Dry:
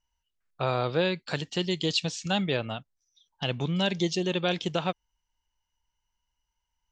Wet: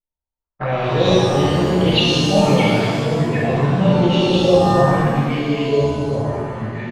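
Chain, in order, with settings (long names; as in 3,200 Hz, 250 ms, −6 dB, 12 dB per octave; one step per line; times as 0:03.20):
adaptive Wiener filter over 25 samples
leveller curve on the samples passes 3
on a send: single-tap delay 287 ms −7.5 dB
on the sum: flanger swept by the level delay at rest 11 ms, full sweep at −16.5 dBFS
auto-filter low-pass saw up 0.91 Hz 480–4,900 Hz
delay with pitch and tempo change per echo 109 ms, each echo −4 semitones, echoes 2, each echo −6 dB
reverb with rising layers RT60 1.6 s, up +7 semitones, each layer −8 dB, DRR −7 dB
level −4.5 dB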